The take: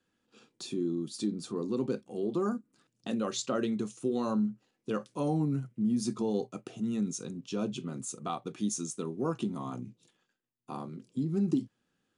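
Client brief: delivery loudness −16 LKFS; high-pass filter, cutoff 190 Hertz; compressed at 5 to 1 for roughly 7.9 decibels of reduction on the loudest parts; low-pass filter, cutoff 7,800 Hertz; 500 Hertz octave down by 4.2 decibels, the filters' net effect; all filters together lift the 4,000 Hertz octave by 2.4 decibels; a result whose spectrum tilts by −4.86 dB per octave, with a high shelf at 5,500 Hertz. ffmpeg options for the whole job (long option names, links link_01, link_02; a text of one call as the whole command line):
ffmpeg -i in.wav -af "highpass=190,lowpass=7800,equalizer=frequency=500:width_type=o:gain=-5.5,equalizer=frequency=4000:width_type=o:gain=6,highshelf=frequency=5500:gain=-7,acompressor=threshold=-34dB:ratio=5,volume=24dB" out.wav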